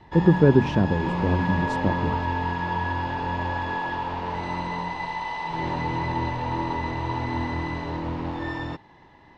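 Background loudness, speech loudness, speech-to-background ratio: −28.5 LKFS, −22.5 LKFS, 6.0 dB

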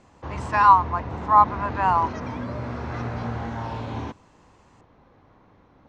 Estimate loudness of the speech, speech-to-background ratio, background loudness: −20.0 LKFS, 12.0 dB, −32.0 LKFS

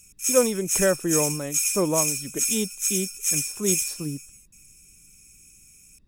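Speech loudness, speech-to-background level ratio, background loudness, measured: −27.5 LKFS, −3.5 dB, −24.0 LKFS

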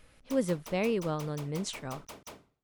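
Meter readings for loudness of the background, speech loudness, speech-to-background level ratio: −48.0 LKFS, −33.0 LKFS, 15.0 dB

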